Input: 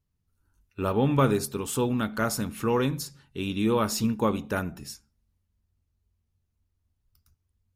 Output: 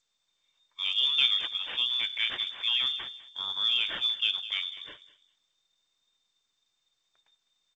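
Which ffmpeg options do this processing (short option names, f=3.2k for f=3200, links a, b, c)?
-filter_complex "[0:a]asoftclip=type=hard:threshold=-11dB,highpass=f=44:w=0.5412,highpass=f=44:w=1.3066,asettb=1/sr,asplit=3[a][b][c];[a]atrim=end=1.474[d];[b]atrim=start=1.47:end=2.69,asetpts=PTS-STARTPTS,afade=t=in:d=0.004:c=qsin,afade=t=out:st=1.216:d=0.004:c=qsin,equalizer=f=2k:t=o:w=0.75:g=4[e];[c]atrim=start=2.686[f];[d][e]acrossfade=d=0.004:c1=hsin:c2=qsin[g];[g][f]acrossfade=d=0.004:c1=qsin:c2=hsin,acrusher=samples=5:mix=1:aa=0.000001,bandreject=f=1.2k:w=19,asplit=2[h][i];[i]adelay=203,lowpass=f=1.2k:p=1,volume=-13dB,asplit=2[j][k];[k]adelay=203,lowpass=f=1.2k:p=1,volume=0.26,asplit=2[l][m];[m]adelay=203,lowpass=f=1.2k:p=1,volume=0.26[n];[h][j][l][n]amix=inputs=4:normalize=0,lowpass=f=3.1k:t=q:w=0.5098,lowpass=f=3.1k:t=q:w=0.6013,lowpass=f=3.1k:t=q:w=0.9,lowpass=f=3.1k:t=q:w=2.563,afreqshift=-3700,volume=-3.5dB" -ar 16000 -c:a g722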